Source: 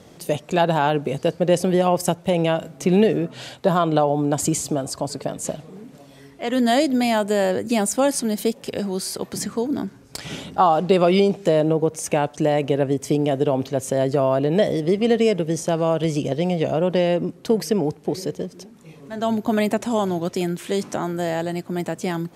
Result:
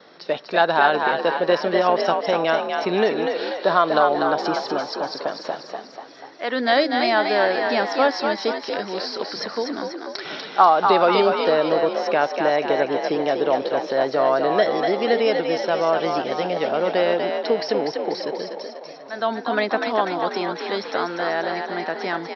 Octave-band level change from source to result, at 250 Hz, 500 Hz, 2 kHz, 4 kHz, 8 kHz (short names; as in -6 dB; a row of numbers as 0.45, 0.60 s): -6.0 dB, +0.5 dB, +7.5 dB, +3.5 dB, under -15 dB